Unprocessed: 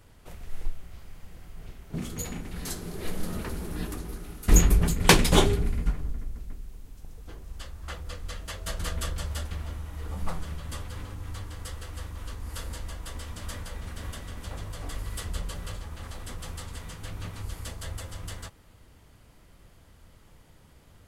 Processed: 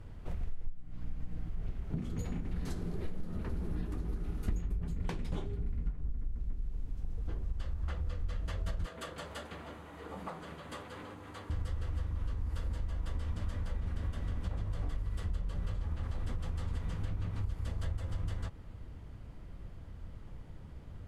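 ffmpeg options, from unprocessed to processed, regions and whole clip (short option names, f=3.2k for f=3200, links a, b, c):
-filter_complex "[0:a]asettb=1/sr,asplit=3[a][b][c];[a]atrim=end=0.664[d];[b]atrim=start=0.66:end=1.49,asetpts=PTS-STARTPTS,afade=t=in:d=0.004:c=qsin,afade=t=out:st=0.826:d=0.004:c=qsin,aecho=1:1:6.5:0.74,atrim=end_sample=36603,aeval=exprs='val(0)+0.00562*(sin(2*PI*60*n/s)+sin(2*PI*2*60*n/s)/2+sin(2*PI*3*60*n/s)/3+sin(2*PI*4*60*n/s)/4+sin(2*PI*5*60*n/s)/5)':c=same[e];[c]atrim=start=1.486[f];[d][e]acrossfade=d=0.004:c1=hsin:c2=qsin[g];[g][f]acrossfade=d=0.004:c1=qsin:c2=hsin,asettb=1/sr,asplit=3[h][i][j];[h]atrim=end=8.864[k];[i]atrim=start=8.86:end=11.5,asetpts=PTS-STARTPTS,afade=t=in:d=0.004:c=qsin,afade=t=out:st=2.636:d=0.004:c=qsin,highpass=350,equalizer=f=5.5k:w=5.8:g=-6.5[l];[j]atrim=start=11.496[m];[k][l]acrossfade=d=0.004:c1=hsin:c2=qsin[n];[n][m]acrossfade=d=0.004:c1=qsin:c2=hsin,aemphasis=mode=reproduction:type=75kf,acompressor=threshold=-39dB:ratio=16,lowshelf=f=270:g=9.5"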